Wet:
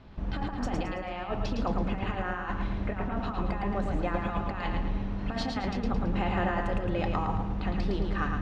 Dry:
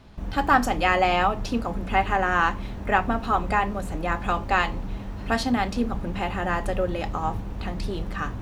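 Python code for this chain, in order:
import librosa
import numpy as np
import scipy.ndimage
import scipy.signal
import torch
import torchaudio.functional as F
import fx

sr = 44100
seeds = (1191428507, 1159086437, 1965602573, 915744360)

p1 = fx.over_compress(x, sr, threshold_db=-26.0, ratio=-0.5)
p2 = fx.air_absorb(p1, sr, metres=150.0)
p3 = p2 + fx.echo_feedback(p2, sr, ms=110, feedback_pct=44, wet_db=-4.5, dry=0)
y = p3 * 10.0 ** (-4.0 / 20.0)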